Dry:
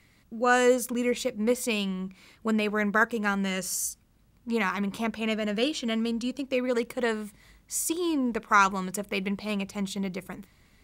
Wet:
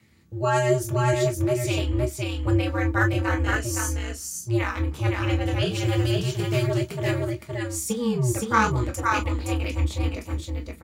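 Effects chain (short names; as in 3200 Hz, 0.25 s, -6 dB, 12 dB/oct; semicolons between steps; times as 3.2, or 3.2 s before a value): 5.71–6.66 spectral whitening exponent 0.6; ring modulator 120 Hz; echo 0.518 s -3 dB; on a send at -2.5 dB: reverb, pre-delay 3 ms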